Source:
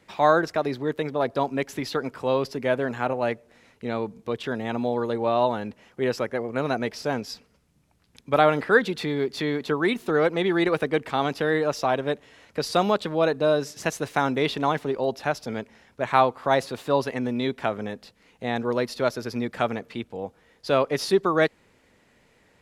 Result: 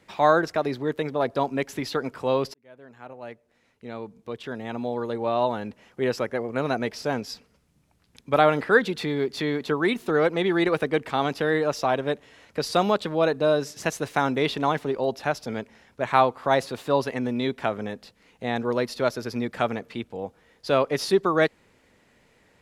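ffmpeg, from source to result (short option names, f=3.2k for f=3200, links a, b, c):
-filter_complex "[0:a]asplit=2[a][b];[a]atrim=end=2.54,asetpts=PTS-STARTPTS,afade=t=out:st=2.536:d=0.004:c=hsin[c];[b]atrim=start=2.54,asetpts=PTS-STARTPTS,afade=t=in:d=3.47[d];[c][d]concat=n=2:v=0:a=1"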